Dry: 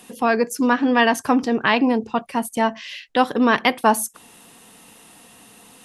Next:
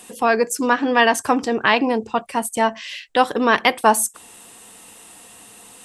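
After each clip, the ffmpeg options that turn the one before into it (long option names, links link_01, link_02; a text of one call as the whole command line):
ffmpeg -i in.wav -af "equalizer=frequency=160:width_type=o:width=0.33:gain=-9,equalizer=frequency=250:width_type=o:width=0.33:gain=-6,equalizer=frequency=8000:width_type=o:width=0.33:gain=9,volume=2dB" out.wav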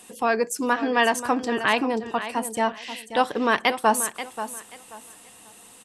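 ffmpeg -i in.wav -af "aecho=1:1:533|1066|1599:0.266|0.0665|0.0166,volume=-5dB" out.wav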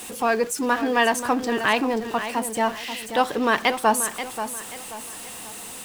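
ffmpeg -i in.wav -af "aeval=exprs='val(0)+0.5*0.0211*sgn(val(0))':channel_layout=same" out.wav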